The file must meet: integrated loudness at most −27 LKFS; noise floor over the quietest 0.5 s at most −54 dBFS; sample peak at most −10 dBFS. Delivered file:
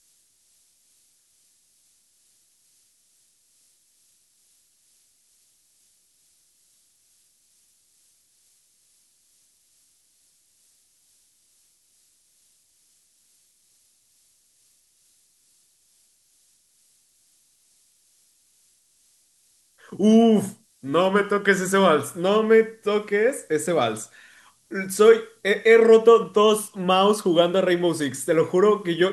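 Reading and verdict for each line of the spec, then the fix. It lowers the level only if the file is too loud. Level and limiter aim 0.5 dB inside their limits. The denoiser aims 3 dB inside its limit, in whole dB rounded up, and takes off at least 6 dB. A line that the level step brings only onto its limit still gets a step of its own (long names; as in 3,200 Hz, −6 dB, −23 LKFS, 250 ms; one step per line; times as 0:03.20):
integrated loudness −19.5 LKFS: out of spec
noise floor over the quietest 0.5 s −63 dBFS: in spec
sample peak −3.5 dBFS: out of spec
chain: level −8 dB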